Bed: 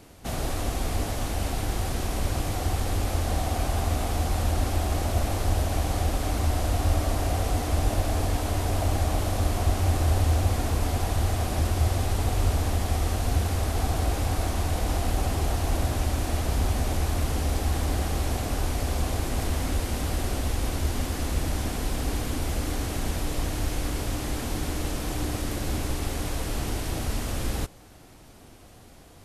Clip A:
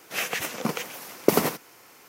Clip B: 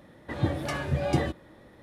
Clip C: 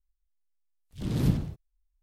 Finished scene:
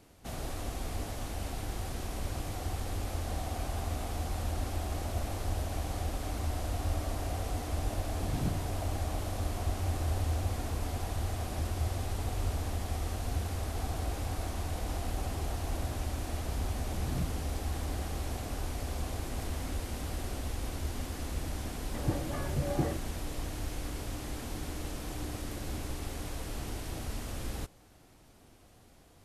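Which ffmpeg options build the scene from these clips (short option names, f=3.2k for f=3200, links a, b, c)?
-filter_complex "[3:a]asplit=2[a][b];[0:a]volume=-9dB[c];[2:a]lowpass=1.3k[d];[a]atrim=end=2.02,asetpts=PTS-STARTPTS,volume=-10dB,afade=t=in:d=0.004:c=hsin,afade=t=out:st=2.016:d=0.004:c=hsin,adelay=7180[e];[b]atrim=end=2.02,asetpts=PTS-STARTPTS,volume=-12dB,afade=t=in:d=0.004:c=hsin,afade=t=out:st=2.016:d=0.004:c=hsin,adelay=15920[f];[d]atrim=end=1.82,asetpts=PTS-STARTPTS,volume=-5.5dB,afade=t=in:d=0.004:c=hsin,afade=t=out:st=1.816:d=0.004:c=hsin,adelay=21650[g];[c][e][f][g]amix=inputs=4:normalize=0"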